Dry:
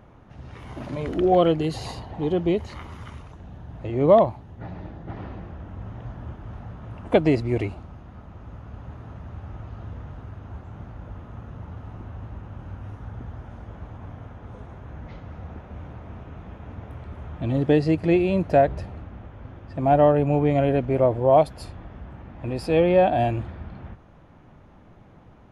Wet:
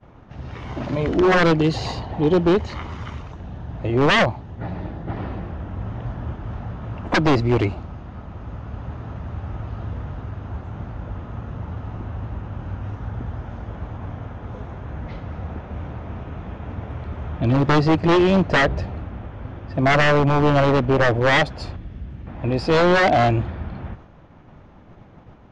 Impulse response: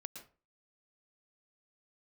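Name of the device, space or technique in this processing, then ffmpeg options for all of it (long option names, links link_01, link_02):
synthesiser wavefolder: -filter_complex "[0:a]aeval=exprs='0.133*(abs(mod(val(0)/0.133+3,4)-2)-1)':channel_layout=same,lowpass=frequency=6500:width=0.5412,lowpass=frequency=6500:width=1.3066,agate=range=-33dB:threshold=-46dB:ratio=3:detection=peak,asettb=1/sr,asplit=3[link_01][link_02][link_03];[link_01]atrim=end=21.764[link_04];[link_02]atrim=start=21.76:end=22.27,asetpts=PTS-STARTPTS,afade=type=in:duration=0.004:curve=qsin,afade=type=out:start_time=0.506:duration=0.004:curve=qsin,equalizer=frequency=920:width_type=o:width=2.4:gain=-14.5[link_05];[link_03]atrim=start=22.266[link_06];[link_04][link_05]acrossfade=duration=0.004:curve1=hsin:curve2=qsin[link_07];[link_07][link_06]acrossfade=duration=0.004:curve1=qsin:curve2=hsin,volume=7dB"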